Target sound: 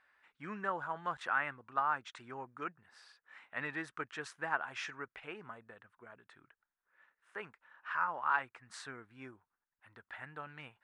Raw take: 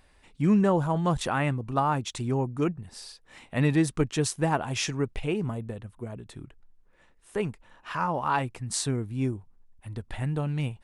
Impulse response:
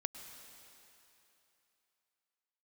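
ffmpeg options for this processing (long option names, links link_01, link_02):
-af "bandpass=frequency=1500:width_type=q:width=2.9:csg=0,volume=1dB"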